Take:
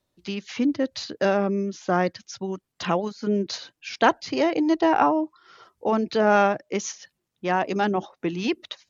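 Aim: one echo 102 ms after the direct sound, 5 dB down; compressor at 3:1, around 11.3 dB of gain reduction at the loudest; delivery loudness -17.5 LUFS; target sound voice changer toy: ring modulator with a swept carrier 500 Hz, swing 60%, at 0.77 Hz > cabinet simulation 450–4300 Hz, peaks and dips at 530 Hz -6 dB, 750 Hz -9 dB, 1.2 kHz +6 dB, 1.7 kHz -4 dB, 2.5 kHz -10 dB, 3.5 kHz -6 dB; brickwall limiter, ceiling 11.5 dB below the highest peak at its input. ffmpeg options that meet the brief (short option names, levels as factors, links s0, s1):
-af "acompressor=threshold=0.0355:ratio=3,alimiter=level_in=1.06:limit=0.0631:level=0:latency=1,volume=0.944,aecho=1:1:102:0.562,aeval=exprs='val(0)*sin(2*PI*500*n/s+500*0.6/0.77*sin(2*PI*0.77*n/s))':c=same,highpass=450,equalizer=f=530:t=q:w=4:g=-6,equalizer=f=750:t=q:w=4:g=-9,equalizer=f=1200:t=q:w=4:g=6,equalizer=f=1700:t=q:w=4:g=-4,equalizer=f=2500:t=q:w=4:g=-10,equalizer=f=3500:t=q:w=4:g=-6,lowpass=f=4300:w=0.5412,lowpass=f=4300:w=1.3066,volume=14.1"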